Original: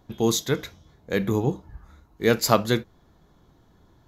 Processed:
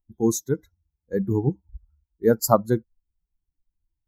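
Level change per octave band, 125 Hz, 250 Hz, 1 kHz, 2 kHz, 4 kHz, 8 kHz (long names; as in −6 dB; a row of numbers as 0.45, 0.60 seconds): +1.0, +1.0, 0.0, −10.0, −11.5, −0.5 decibels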